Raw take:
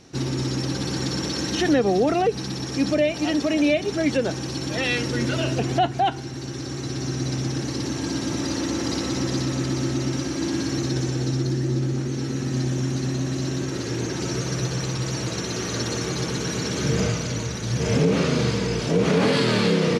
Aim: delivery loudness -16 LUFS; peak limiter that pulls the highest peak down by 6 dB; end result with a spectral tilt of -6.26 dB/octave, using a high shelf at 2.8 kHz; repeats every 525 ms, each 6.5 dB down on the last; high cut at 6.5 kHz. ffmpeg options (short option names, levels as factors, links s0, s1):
-af "lowpass=6500,highshelf=f=2800:g=-7.5,alimiter=limit=0.168:level=0:latency=1,aecho=1:1:525|1050|1575|2100|2625|3150:0.473|0.222|0.105|0.0491|0.0231|0.0109,volume=2.82"